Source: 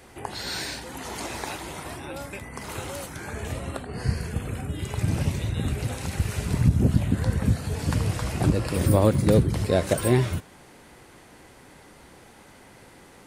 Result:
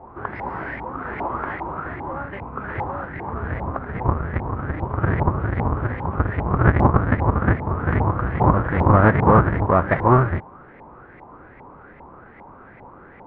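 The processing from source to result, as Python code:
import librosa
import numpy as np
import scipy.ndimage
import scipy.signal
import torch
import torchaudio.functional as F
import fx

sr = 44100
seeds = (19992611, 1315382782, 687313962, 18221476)

y = fx.halfwave_hold(x, sr)
y = fx.spacing_loss(y, sr, db_at_10k=44)
y = fx.formant_shift(y, sr, semitones=3)
y = fx.filter_lfo_lowpass(y, sr, shape='saw_up', hz=2.5, low_hz=840.0, high_hz=2100.0, q=6.7)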